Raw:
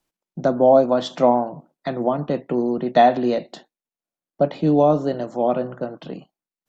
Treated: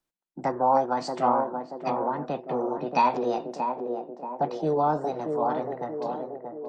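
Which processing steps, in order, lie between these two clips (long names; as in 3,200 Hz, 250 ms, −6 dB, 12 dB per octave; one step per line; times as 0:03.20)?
formants moved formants +5 semitones
feedback echo with a band-pass in the loop 631 ms, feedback 63%, band-pass 410 Hz, level −3.5 dB
level −8 dB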